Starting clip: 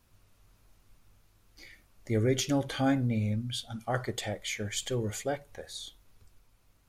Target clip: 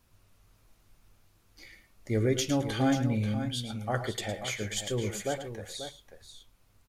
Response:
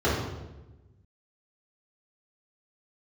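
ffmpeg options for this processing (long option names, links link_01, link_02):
-af "aecho=1:1:108|114|119|536:0.237|0.119|0.119|0.316"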